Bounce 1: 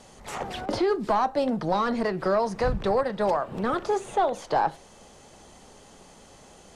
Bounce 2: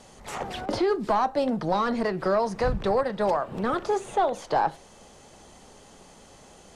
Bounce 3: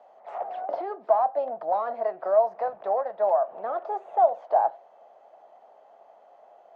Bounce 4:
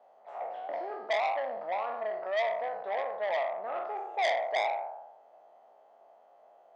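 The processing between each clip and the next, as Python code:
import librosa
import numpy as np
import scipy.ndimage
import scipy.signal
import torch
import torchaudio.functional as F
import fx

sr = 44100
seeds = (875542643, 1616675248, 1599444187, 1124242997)

y1 = x
y2 = fx.ladder_bandpass(y1, sr, hz=720.0, resonance_pct=75)
y2 = y2 * 10.0 ** (6.0 / 20.0)
y3 = fx.spec_trails(y2, sr, decay_s=1.0)
y3 = fx.transformer_sat(y3, sr, knee_hz=2500.0)
y3 = y3 * 10.0 ** (-8.0 / 20.0)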